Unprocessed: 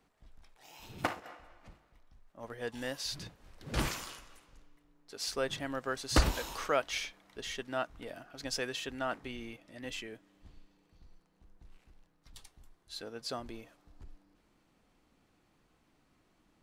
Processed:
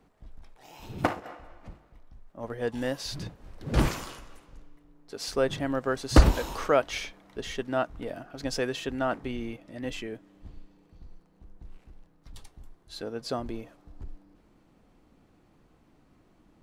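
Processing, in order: tilt shelf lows +5 dB, about 1.1 kHz; trim +5.5 dB

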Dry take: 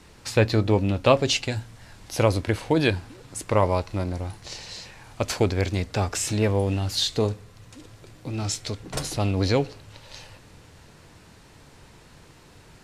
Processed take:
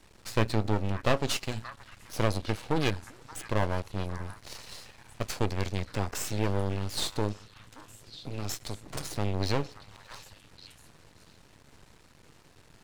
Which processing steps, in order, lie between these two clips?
half-wave rectifier; repeats whose band climbs or falls 577 ms, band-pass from 1.4 kHz, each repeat 1.4 oct, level -10 dB; trim -3 dB

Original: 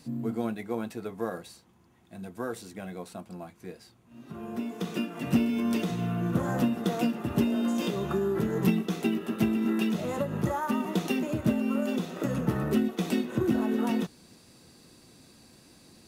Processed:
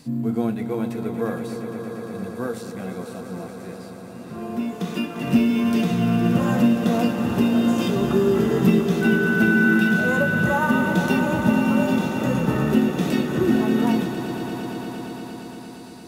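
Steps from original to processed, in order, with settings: harmonic-percussive split harmonic +8 dB; 9.01–9.72 s: whistle 1.5 kHz -24 dBFS; echo with a slow build-up 116 ms, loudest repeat 5, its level -12 dB

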